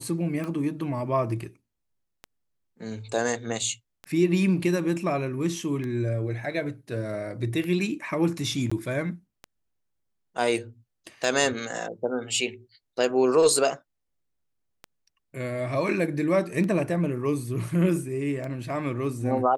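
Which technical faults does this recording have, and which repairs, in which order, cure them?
scratch tick 33 1/3 rpm −22 dBFS
0:08.70–0:08.71: drop-out 15 ms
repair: click removal
repair the gap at 0:08.70, 15 ms

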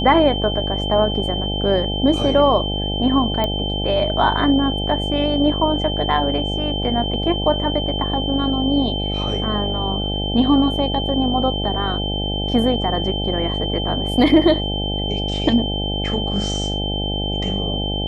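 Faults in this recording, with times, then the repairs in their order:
mains buzz 50 Hz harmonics 17 −24 dBFS
whistle 3,100 Hz −25 dBFS
0:03.44: click −9 dBFS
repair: click removal
notch filter 3,100 Hz, Q 30
hum removal 50 Hz, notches 17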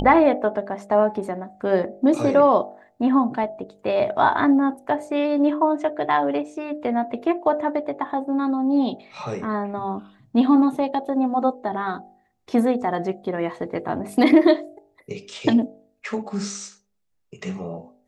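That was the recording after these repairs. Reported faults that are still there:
none of them is left

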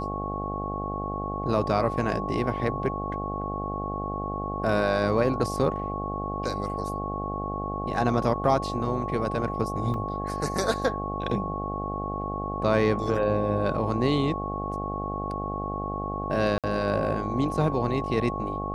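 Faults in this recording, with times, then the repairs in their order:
mains buzz 50 Hz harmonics 17 −33 dBFS
whistle 1,100 Hz −32 dBFS
0:09.94: drop-out 2.2 ms
0:16.58–0:16.64: drop-out 57 ms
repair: hum removal 50 Hz, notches 17
notch filter 1,100 Hz, Q 30
repair the gap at 0:09.94, 2.2 ms
repair the gap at 0:16.58, 57 ms

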